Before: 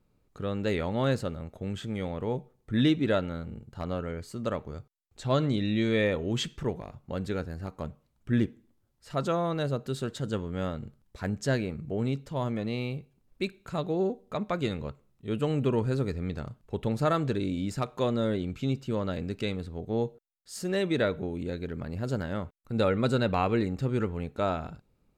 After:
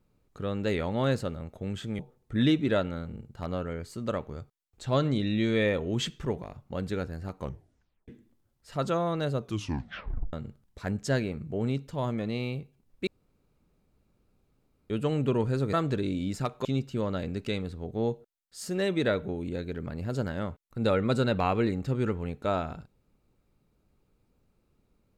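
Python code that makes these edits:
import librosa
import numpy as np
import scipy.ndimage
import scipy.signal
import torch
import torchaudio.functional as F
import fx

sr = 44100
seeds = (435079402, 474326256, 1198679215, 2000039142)

y = fx.edit(x, sr, fx.cut(start_s=1.99, length_s=0.38),
    fx.tape_stop(start_s=7.77, length_s=0.69),
    fx.tape_stop(start_s=9.76, length_s=0.95),
    fx.room_tone_fill(start_s=13.45, length_s=1.83),
    fx.cut(start_s=16.11, length_s=0.99),
    fx.cut(start_s=18.02, length_s=0.57), tone=tone)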